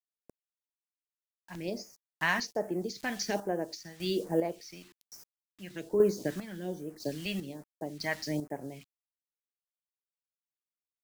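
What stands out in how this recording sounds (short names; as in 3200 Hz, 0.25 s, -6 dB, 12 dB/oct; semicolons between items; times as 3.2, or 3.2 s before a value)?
a quantiser's noise floor 8-bit, dither none; chopped level 1 Hz, depth 60%, duty 40%; phasing stages 2, 1.2 Hz, lowest notch 380–3700 Hz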